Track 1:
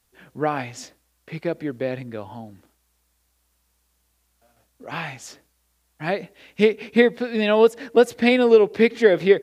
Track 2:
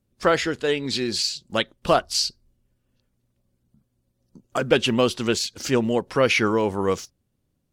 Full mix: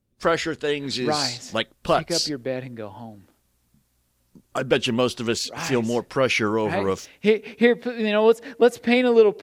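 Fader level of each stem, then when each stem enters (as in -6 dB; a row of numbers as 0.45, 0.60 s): -1.5, -1.5 dB; 0.65, 0.00 s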